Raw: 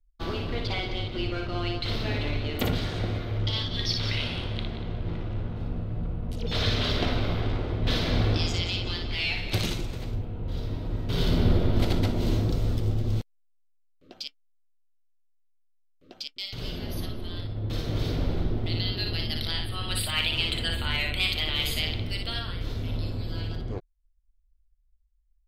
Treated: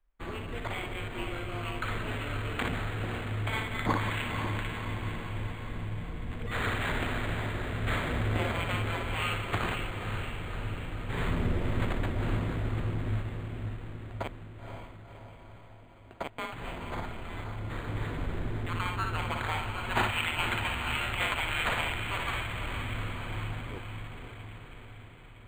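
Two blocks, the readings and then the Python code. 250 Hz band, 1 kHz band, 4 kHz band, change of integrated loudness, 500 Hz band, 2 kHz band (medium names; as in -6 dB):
-5.0 dB, +4.5 dB, -9.5 dB, -4.5 dB, -3.5 dB, +1.5 dB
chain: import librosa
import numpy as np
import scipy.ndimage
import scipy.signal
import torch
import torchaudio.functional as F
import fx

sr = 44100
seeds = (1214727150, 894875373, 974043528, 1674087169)

y = scipy.signal.lfilter([1.0, -0.8], [1.0], x)
y = fx.echo_diffused(y, sr, ms=518, feedback_pct=62, wet_db=-6.0)
y = np.interp(np.arange(len(y)), np.arange(len(y))[::8], y[::8])
y = F.gain(torch.from_numpy(y), 6.5).numpy()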